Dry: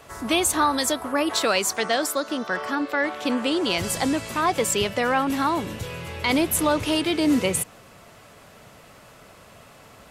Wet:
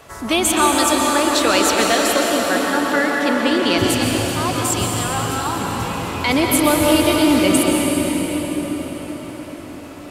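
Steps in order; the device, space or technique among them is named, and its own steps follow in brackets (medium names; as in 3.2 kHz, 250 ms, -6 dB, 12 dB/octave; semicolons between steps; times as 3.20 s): 3.78–5.61 s: graphic EQ 125/250/500/2000 Hz +10/-11/-11/-11 dB; cathedral (reverberation RT60 6.3 s, pre-delay 116 ms, DRR -1.5 dB); trim +3.5 dB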